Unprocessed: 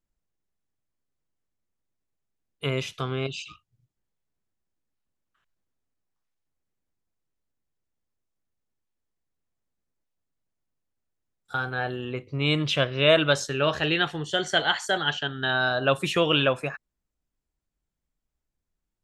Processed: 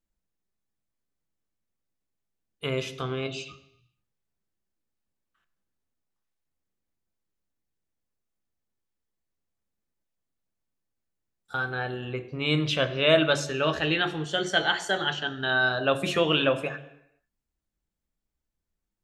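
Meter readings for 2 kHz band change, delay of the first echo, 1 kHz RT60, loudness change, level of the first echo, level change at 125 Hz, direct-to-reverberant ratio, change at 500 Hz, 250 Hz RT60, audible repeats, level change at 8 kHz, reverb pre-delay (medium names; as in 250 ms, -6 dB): -0.5 dB, no echo, 0.80 s, -1.0 dB, no echo, -2.5 dB, 7.5 dB, -1.0 dB, 0.80 s, no echo, -2.0 dB, 3 ms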